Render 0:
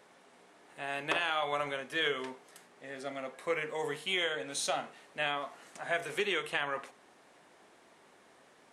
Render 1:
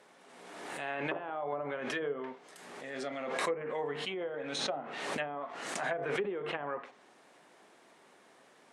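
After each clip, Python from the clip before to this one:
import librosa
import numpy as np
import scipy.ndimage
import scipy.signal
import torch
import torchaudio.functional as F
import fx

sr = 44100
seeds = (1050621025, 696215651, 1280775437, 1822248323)

y = fx.env_lowpass_down(x, sr, base_hz=670.0, full_db=-28.5)
y = scipy.signal.sosfilt(scipy.signal.butter(2, 130.0, 'highpass', fs=sr, output='sos'), y)
y = fx.pre_swell(y, sr, db_per_s=35.0)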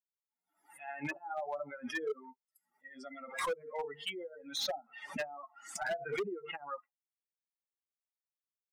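y = fx.bin_expand(x, sr, power=3.0)
y = fx.low_shelf(y, sr, hz=180.0, db=-5.0)
y = np.clip(y, -10.0 ** (-36.0 / 20.0), 10.0 ** (-36.0 / 20.0))
y = y * librosa.db_to_amplitude(5.5)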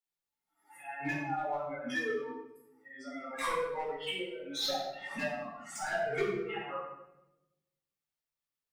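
y = fx.room_shoebox(x, sr, seeds[0], volume_m3=340.0, walls='mixed', distance_m=4.2)
y = y * librosa.db_to_amplitude(-7.0)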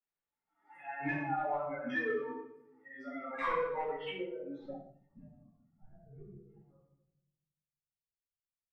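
y = fx.filter_sweep_lowpass(x, sr, from_hz=2000.0, to_hz=100.0, start_s=4.08, end_s=5.15, q=0.89)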